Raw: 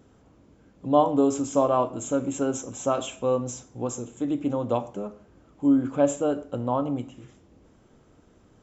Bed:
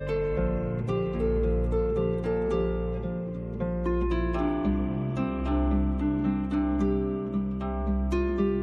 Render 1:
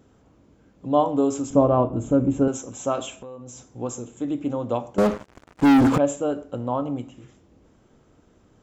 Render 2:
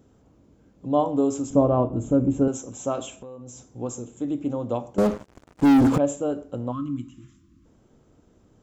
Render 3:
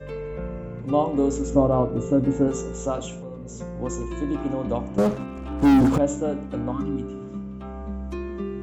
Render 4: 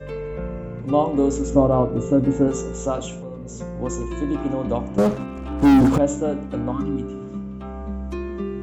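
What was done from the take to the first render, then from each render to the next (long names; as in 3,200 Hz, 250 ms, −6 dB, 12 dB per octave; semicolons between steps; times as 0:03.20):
0:01.50–0:02.48: spectral tilt −4 dB per octave; 0:03.11–0:03.70: downward compressor 5 to 1, threshold −37 dBFS; 0:04.98–0:05.98: leveller curve on the samples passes 5
0:06.72–0:07.66: gain on a spectral selection 360–1,000 Hz −26 dB; parametric band 1,900 Hz −5.5 dB 2.7 octaves
mix in bed −5 dB
level +2.5 dB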